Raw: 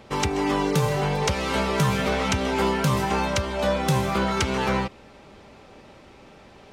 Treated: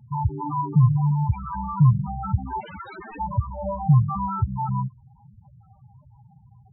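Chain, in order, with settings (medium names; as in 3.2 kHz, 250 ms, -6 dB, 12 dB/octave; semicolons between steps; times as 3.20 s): graphic EQ 125/250/500/1000/4000 Hz +12/-6/-7/+7/-5 dB; 2.60–3.20 s: integer overflow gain 20.5 dB; loudest bins only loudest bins 4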